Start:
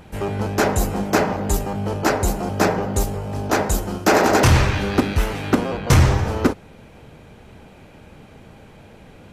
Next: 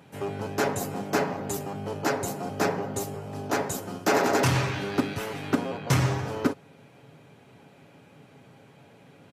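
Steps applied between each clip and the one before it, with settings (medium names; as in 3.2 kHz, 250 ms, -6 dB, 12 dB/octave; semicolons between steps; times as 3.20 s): high-pass 110 Hz 24 dB/octave; comb 7.2 ms, depth 42%; trim -8 dB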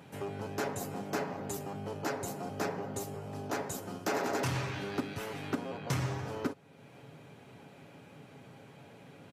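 compression 1.5:1, threshold -47 dBFS, peak gain reduction 10.5 dB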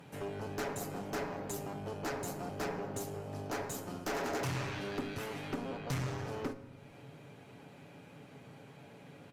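valve stage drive 32 dB, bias 0.5; simulated room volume 780 m³, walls mixed, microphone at 0.4 m; trim +1 dB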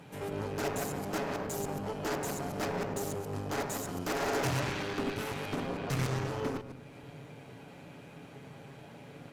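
chunks repeated in reverse 105 ms, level -3 dB; Chebyshev shaper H 2 -7 dB, 4 -14 dB, 6 -14 dB, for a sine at -23 dBFS; trim +2.5 dB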